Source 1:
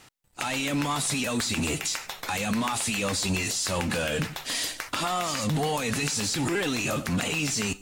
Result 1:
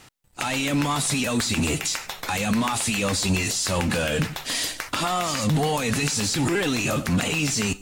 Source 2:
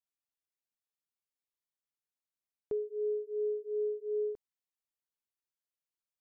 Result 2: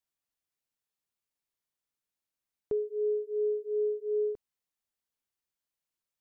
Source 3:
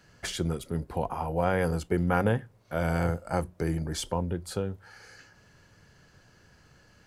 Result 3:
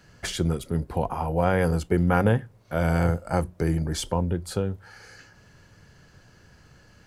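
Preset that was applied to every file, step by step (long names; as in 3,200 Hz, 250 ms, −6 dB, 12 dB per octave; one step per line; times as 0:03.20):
low-shelf EQ 210 Hz +3.5 dB
level +3 dB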